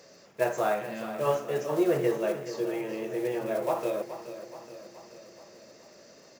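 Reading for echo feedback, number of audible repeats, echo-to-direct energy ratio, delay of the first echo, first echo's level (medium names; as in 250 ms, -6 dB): 57%, 5, -10.5 dB, 425 ms, -12.0 dB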